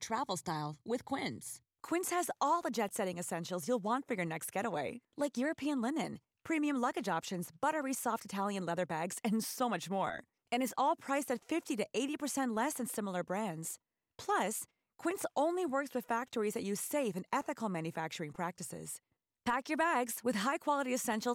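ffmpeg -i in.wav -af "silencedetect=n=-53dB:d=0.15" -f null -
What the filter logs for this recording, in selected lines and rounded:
silence_start: 1.57
silence_end: 1.84 | silence_duration: 0.27
silence_start: 4.98
silence_end: 5.18 | silence_duration: 0.19
silence_start: 6.18
silence_end: 6.45 | silence_duration: 0.28
silence_start: 10.21
silence_end: 10.52 | silence_duration: 0.31
silence_start: 13.76
silence_end: 14.19 | silence_duration: 0.43
silence_start: 14.65
silence_end: 14.99 | silence_duration: 0.35
silence_start: 18.97
silence_end: 19.46 | silence_duration: 0.49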